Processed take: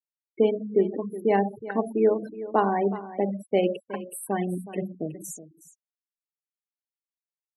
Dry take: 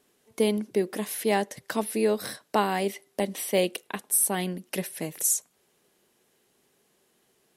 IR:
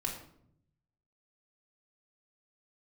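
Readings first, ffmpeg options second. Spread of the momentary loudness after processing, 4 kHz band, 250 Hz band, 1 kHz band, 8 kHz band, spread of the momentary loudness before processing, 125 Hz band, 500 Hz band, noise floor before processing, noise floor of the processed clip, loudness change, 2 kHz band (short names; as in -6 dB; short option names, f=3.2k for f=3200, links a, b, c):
12 LU, -11.0 dB, +2.0 dB, +2.5 dB, -15.0 dB, 8 LU, +2.0 dB, +3.5 dB, -69 dBFS, under -85 dBFS, +0.5 dB, -4.0 dB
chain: -filter_complex "[0:a]asplit=2[a][b];[1:a]atrim=start_sample=2205,highshelf=f=5.4k:g=-3[c];[b][c]afir=irnorm=-1:irlink=0,volume=-3.5dB[d];[a][d]amix=inputs=2:normalize=0,aeval=exprs='0.562*(cos(1*acos(clip(val(0)/0.562,-1,1)))-cos(1*PI/2))+0.0316*(cos(3*acos(clip(val(0)/0.562,-1,1)))-cos(3*PI/2))':c=same,afftfilt=real='re*gte(hypot(re,im),0.0794)':imag='im*gte(hypot(re,im),0.0794)':win_size=1024:overlap=0.75,lowpass=f=1.3k:p=1,aecho=1:1:369:0.178"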